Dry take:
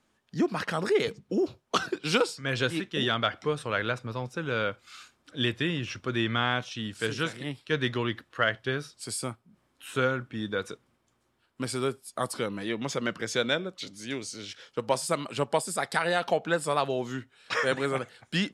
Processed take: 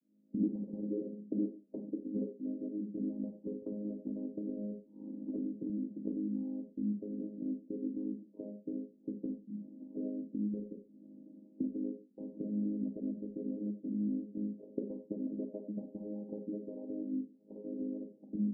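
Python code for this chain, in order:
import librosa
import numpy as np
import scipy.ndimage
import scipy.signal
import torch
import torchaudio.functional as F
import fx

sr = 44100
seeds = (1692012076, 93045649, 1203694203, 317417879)

y = fx.chord_vocoder(x, sr, chord='major triad', root=56)
y = fx.recorder_agc(y, sr, target_db=-20.5, rise_db_per_s=73.0, max_gain_db=30)
y = scipy.ndimage.gaussian_filter1d(y, 23.0, mode='constant')
y = fx.low_shelf(y, sr, hz=170.0, db=-7.5)
y = fx.rev_schroeder(y, sr, rt60_s=0.32, comb_ms=31, drr_db=4.5)
y = fx.band_squash(y, sr, depth_pct=70, at=(3.62, 5.7))
y = y * librosa.db_to_amplitude(-4.5)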